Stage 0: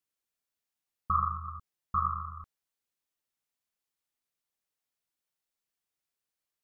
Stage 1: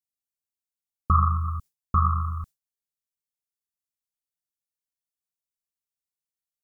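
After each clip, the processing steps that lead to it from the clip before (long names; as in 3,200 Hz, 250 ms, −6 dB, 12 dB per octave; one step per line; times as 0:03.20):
bass and treble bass +11 dB, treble +12 dB
noise gate with hold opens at −30 dBFS
level +5 dB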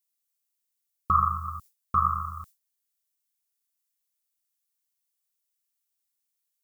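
spectral tilt +3 dB per octave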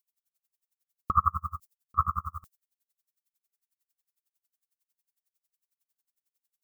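tremolo with a sine in dB 11 Hz, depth 34 dB
level +4.5 dB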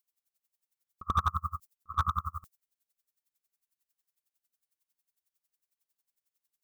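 echo ahead of the sound 86 ms −18 dB
slew-rate limiting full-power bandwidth 93 Hz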